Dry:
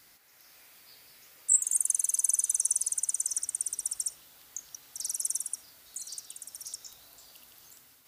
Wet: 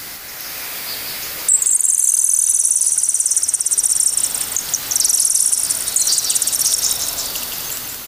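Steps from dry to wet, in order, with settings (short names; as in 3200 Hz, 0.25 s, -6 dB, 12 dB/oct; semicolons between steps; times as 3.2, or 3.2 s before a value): compressor 4:1, threshold -37 dBFS, peak gain reduction 16 dB; frequency-shifting echo 0.173 s, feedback 58%, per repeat -78 Hz, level -6 dB; maximiser +31 dB; gain -3 dB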